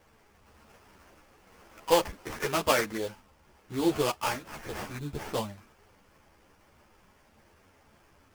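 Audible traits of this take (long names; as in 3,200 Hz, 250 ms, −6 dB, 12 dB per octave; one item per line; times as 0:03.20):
aliases and images of a low sample rate 3,900 Hz, jitter 20%
a shimmering, thickened sound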